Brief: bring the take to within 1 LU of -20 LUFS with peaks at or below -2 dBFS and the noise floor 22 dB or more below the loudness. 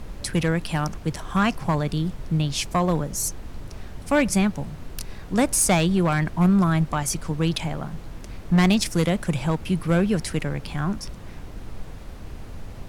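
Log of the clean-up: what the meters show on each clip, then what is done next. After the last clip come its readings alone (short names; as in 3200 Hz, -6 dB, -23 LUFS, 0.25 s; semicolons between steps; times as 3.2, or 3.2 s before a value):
clipped 0.7%; flat tops at -13.0 dBFS; noise floor -39 dBFS; noise floor target -45 dBFS; loudness -23.0 LUFS; peak -13.0 dBFS; loudness target -20.0 LUFS
-> clip repair -13 dBFS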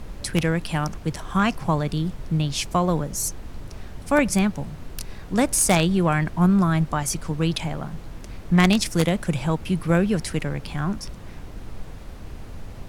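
clipped 0.0%; noise floor -39 dBFS; noise floor target -45 dBFS
-> noise print and reduce 6 dB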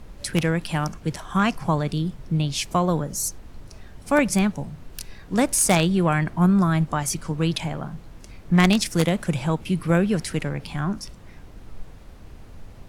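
noise floor -45 dBFS; loudness -23.0 LUFS; peak -4.0 dBFS; loudness target -20.0 LUFS
-> gain +3 dB; limiter -2 dBFS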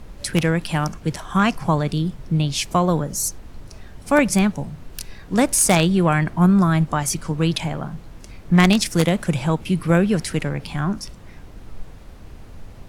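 loudness -20.0 LUFS; peak -2.0 dBFS; noise floor -42 dBFS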